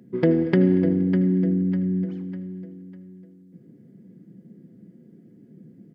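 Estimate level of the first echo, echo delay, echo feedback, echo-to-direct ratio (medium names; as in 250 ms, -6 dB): -22.0 dB, 235 ms, 42%, -21.0 dB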